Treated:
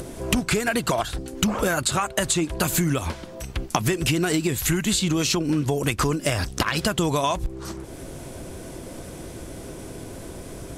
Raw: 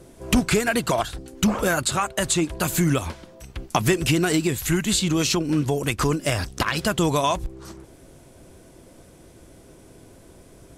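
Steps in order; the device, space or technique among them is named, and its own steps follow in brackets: upward and downward compression (upward compressor, threshold -34 dBFS; compression 5:1, threshold -25 dBFS, peak gain reduction 10.5 dB); trim +5.5 dB

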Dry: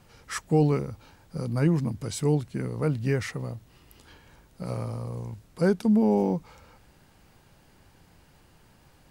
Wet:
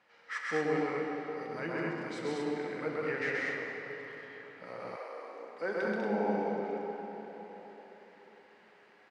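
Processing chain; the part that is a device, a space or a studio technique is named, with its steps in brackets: station announcement (band-pass 440–3600 Hz; peaking EQ 1.9 kHz +9 dB 0.57 oct; loudspeakers at several distances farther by 45 m -1 dB, 67 m -3 dB, 80 m -4 dB; reverberation RT60 4.5 s, pre-delay 3 ms, DRR 0.5 dB); 4.95–5.86 s: high-pass 450 Hz -> 180 Hz 24 dB/octave; trim -8.5 dB

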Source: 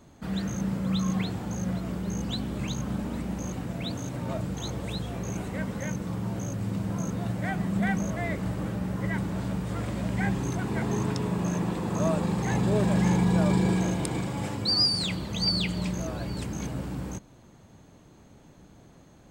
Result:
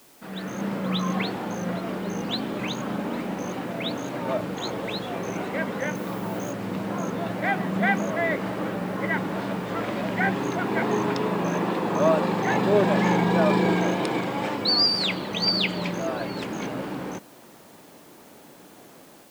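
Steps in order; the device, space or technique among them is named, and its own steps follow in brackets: dictaphone (band-pass 310–3600 Hz; level rider gain up to 9 dB; wow and flutter; white noise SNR 29 dB); 5.95–6.52 s: treble shelf 11 kHz +11.5 dB

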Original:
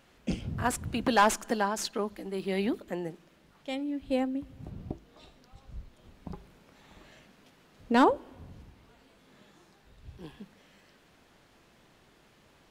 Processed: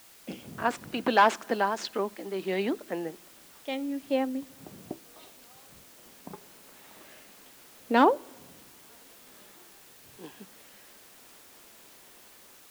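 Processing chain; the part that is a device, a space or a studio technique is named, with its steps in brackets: dictaphone (band-pass 270–4100 Hz; level rider gain up to 7 dB; wow and flutter; white noise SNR 22 dB); trim -4 dB

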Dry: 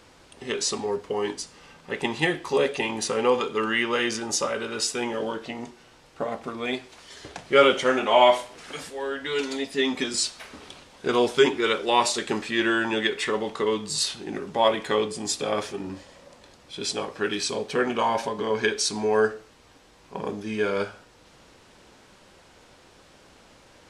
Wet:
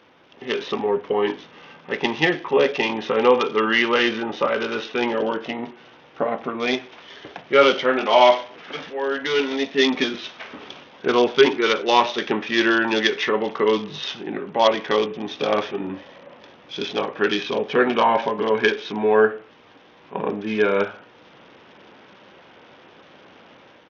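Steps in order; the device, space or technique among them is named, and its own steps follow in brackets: Bluetooth headset (high-pass 160 Hz 12 dB/octave; level rider gain up to 6.5 dB; resampled via 8 kHz; SBC 64 kbps 48 kHz)

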